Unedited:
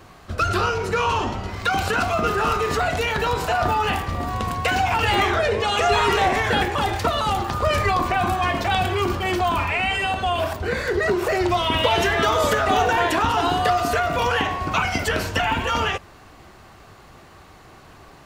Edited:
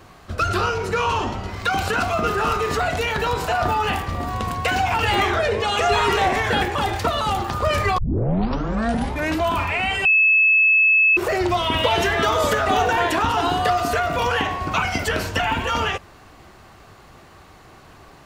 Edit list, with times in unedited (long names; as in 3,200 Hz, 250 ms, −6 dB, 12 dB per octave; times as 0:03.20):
0:07.98: tape start 1.55 s
0:10.05–0:11.17: beep over 2,600 Hz −12 dBFS